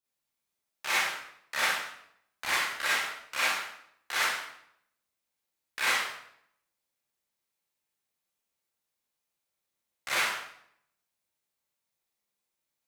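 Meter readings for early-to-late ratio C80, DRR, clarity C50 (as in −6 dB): 4.5 dB, −9.0 dB, 0.5 dB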